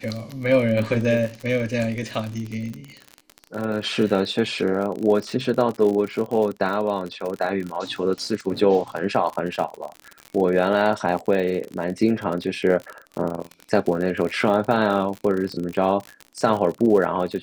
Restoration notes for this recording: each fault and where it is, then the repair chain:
crackle 54/s -27 dBFS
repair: de-click

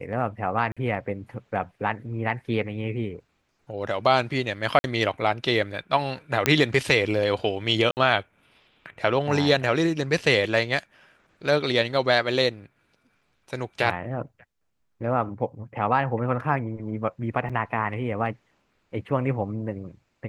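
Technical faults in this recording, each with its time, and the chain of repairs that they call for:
0.72–0.77 gap 46 ms
4.79–4.84 gap 51 ms
6.46 pop -3 dBFS
7.91–7.97 gap 59 ms
17.49–17.5 gap 6.1 ms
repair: de-click; interpolate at 0.72, 46 ms; interpolate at 4.79, 51 ms; interpolate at 7.91, 59 ms; interpolate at 17.49, 6.1 ms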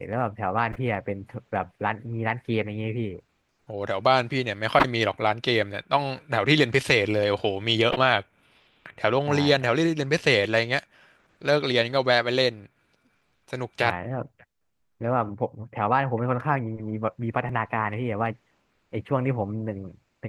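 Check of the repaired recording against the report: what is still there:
none

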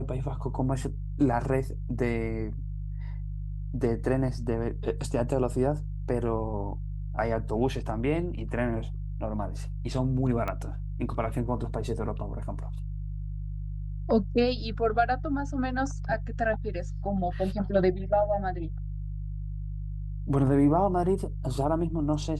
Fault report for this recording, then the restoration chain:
hum 50 Hz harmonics 3 -34 dBFS
10.48 pop -19 dBFS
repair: de-click; de-hum 50 Hz, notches 3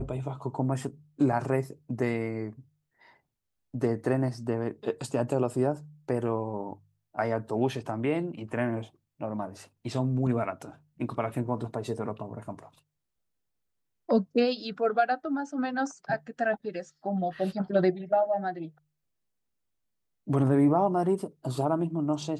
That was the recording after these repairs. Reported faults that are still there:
10.48 pop

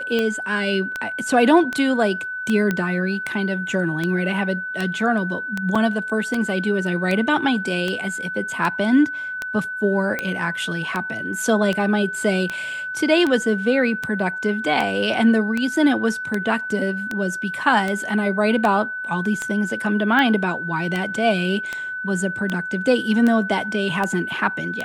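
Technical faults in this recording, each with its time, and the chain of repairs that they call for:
tick 78 rpm -10 dBFS
tone 1500 Hz -26 dBFS
2.71 pop -9 dBFS
5.75 gap 5 ms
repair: de-click; notch 1500 Hz, Q 30; interpolate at 5.75, 5 ms

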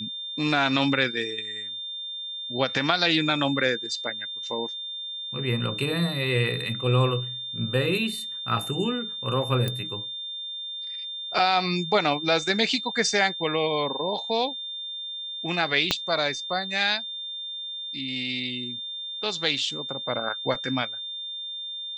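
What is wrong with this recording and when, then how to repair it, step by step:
tone 3600 Hz -32 dBFS
9.68 pop -14 dBFS
15.91 pop -6 dBFS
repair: de-click; notch 3600 Hz, Q 30

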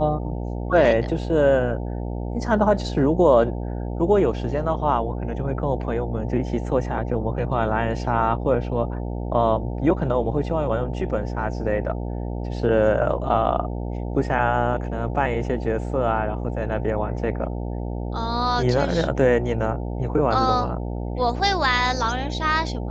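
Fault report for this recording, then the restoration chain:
buzz 60 Hz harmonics 15 -28 dBFS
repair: de-hum 60 Hz, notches 15

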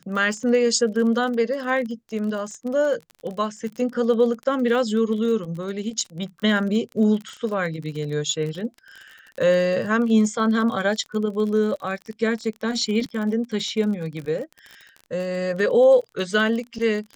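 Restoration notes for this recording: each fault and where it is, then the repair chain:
crackle 38/s -30 dBFS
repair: de-click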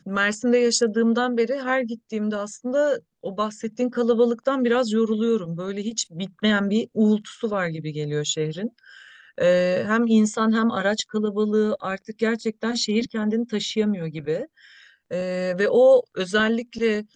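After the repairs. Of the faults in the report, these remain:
none

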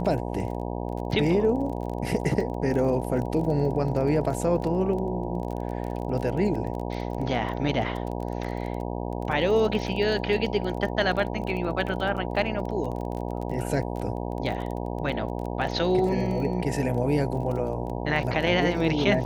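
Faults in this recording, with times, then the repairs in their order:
buzz 60 Hz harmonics 16 -31 dBFS
crackle 23/s -32 dBFS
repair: de-click; de-hum 60 Hz, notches 16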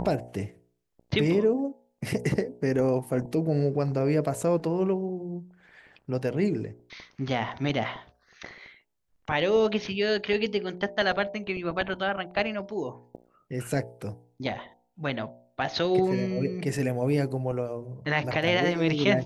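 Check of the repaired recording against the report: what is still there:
none

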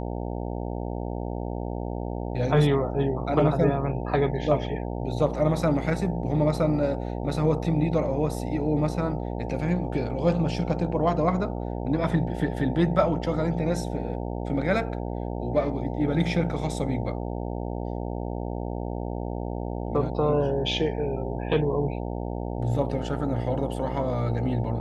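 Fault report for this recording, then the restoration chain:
buzz 60 Hz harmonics 15 -31 dBFS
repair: de-hum 60 Hz, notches 15

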